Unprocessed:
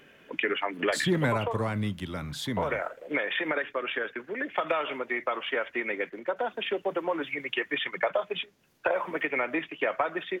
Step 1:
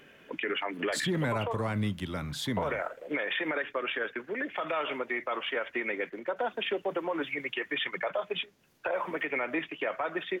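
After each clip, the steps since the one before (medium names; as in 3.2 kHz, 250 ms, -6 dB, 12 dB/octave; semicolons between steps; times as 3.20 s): peak limiter -21.5 dBFS, peak gain reduction 8 dB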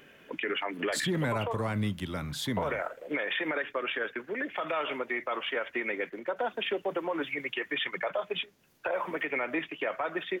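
treble shelf 11 kHz +5 dB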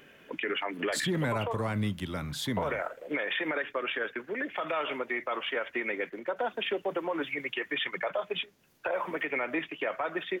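no audible change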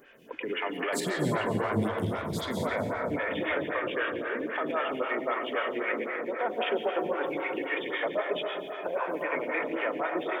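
plate-style reverb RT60 4.7 s, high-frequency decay 0.3×, pre-delay 90 ms, DRR -0.5 dB; lamp-driven phase shifter 3.8 Hz; trim +1.5 dB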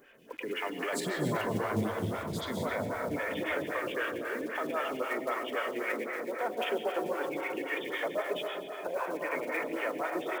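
block-companded coder 5-bit; trim -3 dB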